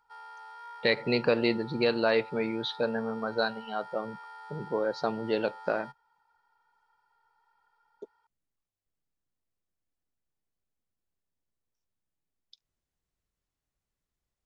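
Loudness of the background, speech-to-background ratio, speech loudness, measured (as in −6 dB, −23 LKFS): −46.5 LKFS, 17.0 dB, −29.5 LKFS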